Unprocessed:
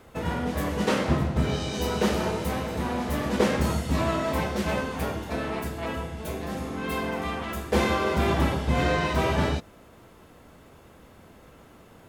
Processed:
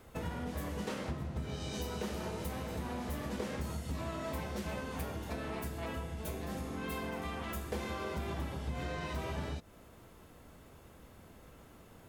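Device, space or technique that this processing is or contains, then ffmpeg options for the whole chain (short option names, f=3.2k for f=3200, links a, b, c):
ASMR close-microphone chain: -af "lowshelf=f=110:g=6,acompressor=threshold=-29dB:ratio=6,highshelf=f=6.4k:g=6,volume=-6.5dB"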